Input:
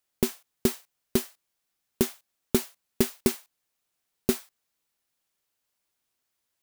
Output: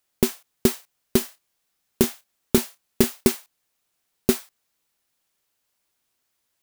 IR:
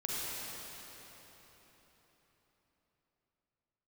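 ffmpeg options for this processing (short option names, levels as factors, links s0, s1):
-filter_complex "[0:a]asettb=1/sr,asplit=3[s0][s1][s2];[s0]atrim=end=1.184[s3];[s1]atrim=start=1.18:end=3.27,asetpts=PTS-STARTPTS,afade=t=in:d=0.004:c=qsin,afade=t=out:st=2.086:d=0.004:c=qsin,asplit=2[s4][s5];[s5]adelay=30,volume=0.282[s6];[s4][s6]amix=inputs=2:normalize=0,atrim=end_sample=92169[s7];[s2]atrim=start=3.266[s8];[s3][s7]acrossfade=d=0.004:c1=hsin:c2=qsin[s9];[s9][s8]acrossfade=d=0.004:c1=qsin:c2=hsin,volume=1.78"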